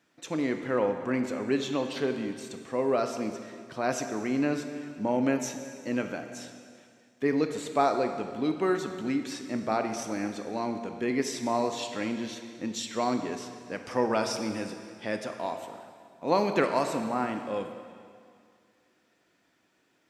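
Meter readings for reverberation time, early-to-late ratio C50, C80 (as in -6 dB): 2.2 s, 7.0 dB, 8.5 dB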